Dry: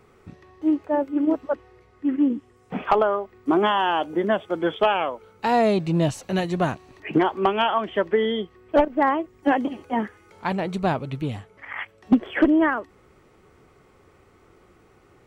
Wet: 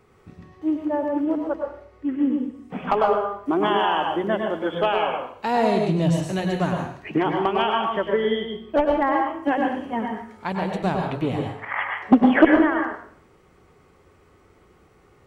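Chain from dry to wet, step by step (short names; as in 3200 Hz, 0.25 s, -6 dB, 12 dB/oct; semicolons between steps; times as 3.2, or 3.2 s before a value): 11.07–12.45 bell 820 Hz +12.5 dB 2.7 oct; plate-style reverb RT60 0.57 s, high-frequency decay 0.9×, pre-delay 90 ms, DRR 1.5 dB; gain -2.5 dB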